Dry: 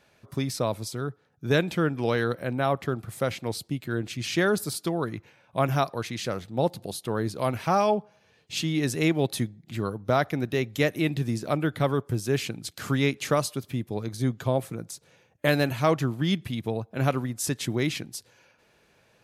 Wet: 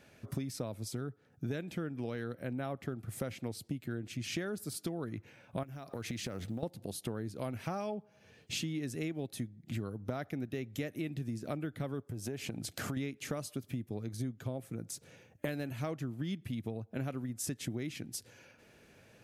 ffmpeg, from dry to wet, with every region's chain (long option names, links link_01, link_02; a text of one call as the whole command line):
ffmpeg -i in.wav -filter_complex "[0:a]asettb=1/sr,asplit=3[link_01][link_02][link_03];[link_01]atrim=end=5.634[link_04];[link_02]atrim=start=5.63:end=6.63,asetpts=PTS-STARTPTS,afade=type=in:duration=0.004:curve=qsin,afade=type=out:start_time=0.996:duration=0.004:curve=qsin,acrusher=bits=9:mode=log:mix=0:aa=0.000001,acompressor=threshold=-34dB:ratio=16:attack=3.2:release=140:knee=1:detection=peak[link_05];[link_03]atrim=start=6.626[link_06];[link_04][link_05]acrossfade=duration=0.004:curve1=hsin:curve2=qsin[link_07];[link_07][link_06]acrossfade=duration=0.004:curve1=qsin:curve2=hsin,asettb=1/sr,asplit=3[link_08][link_09][link_10];[link_08]atrim=end=12.104[link_11];[link_09]atrim=start=12.1:end=12.97,asetpts=PTS-STARTPTS,afade=type=in:duration=0.004:curve=qsin,afade=type=out:start_time=0.866:duration=0.004:curve=qsin,equalizer=frequency=700:width=1.3:gain=7.5,acompressor=threshold=-35dB:ratio=2.5:attack=3.2:release=140:knee=1:detection=peak[link_12];[link_10]atrim=start=12.966[link_13];[link_11][link_12]acrossfade=duration=0.004:curve1=hsin:curve2=qsin[link_14];[link_14][link_13]acrossfade=duration=0.004:curve1=qsin:curve2=hsin,equalizer=frequency=100:width_type=o:width=0.67:gain=4,equalizer=frequency=250:width_type=o:width=0.67:gain=5,equalizer=frequency=1000:width_type=o:width=0.67:gain=-6,equalizer=frequency=4000:width_type=o:width=0.67:gain=-4,acompressor=threshold=-37dB:ratio=8,volume=2dB" out.wav